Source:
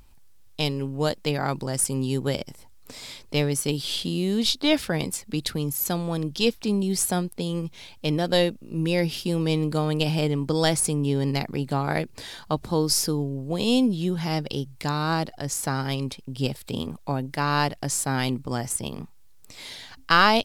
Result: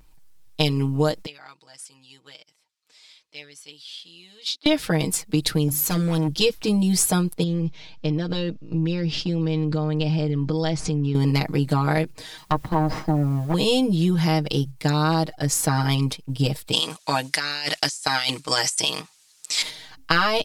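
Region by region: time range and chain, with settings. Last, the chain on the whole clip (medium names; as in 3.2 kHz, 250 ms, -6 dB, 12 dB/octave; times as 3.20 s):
1.26–4.66 s: low-pass 3.6 kHz + differentiator
5.68–6.28 s: overload inside the chain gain 25.5 dB + hum notches 50/100/150/200/250/300/350/400/450 Hz
7.43–11.15 s: low-pass 5.9 kHz 24 dB/octave + bass shelf 170 Hz +6.5 dB + compression, threshold -28 dBFS
12.37–13.54 s: comb filter that takes the minimum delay 1 ms + low-pass that closes with the level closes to 1.5 kHz, closed at -24 dBFS + word length cut 10-bit, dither triangular
16.72–19.62 s: frequency weighting ITU-R 468 + compressor with a negative ratio -30 dBFS
whole clip: gate -35 dBFS, range -7 dB; comb 6.4 ms, depth 90%; compression, threshold -20 dBFS; trim +4 dB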